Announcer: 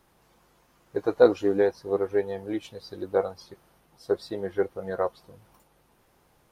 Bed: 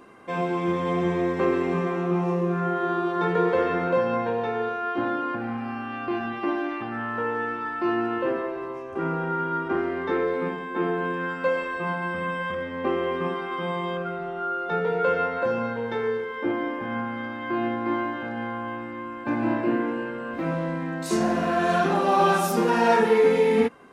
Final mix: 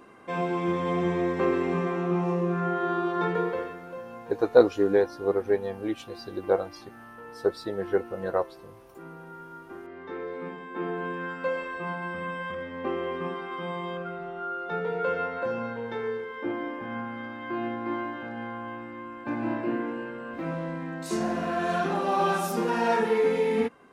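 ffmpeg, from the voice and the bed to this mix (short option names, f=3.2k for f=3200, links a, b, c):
-filter_complex "[0:a]adelay=3350,volume=0.5dB[a];[1:a]volume=10dB,afade=t=out:st=3.2:d=0.57:silence=0.177828,afade=t=in:st=9.81:d=1.27:silence=0.251189[b];[a][b]amix=inputs=2:normalize=0"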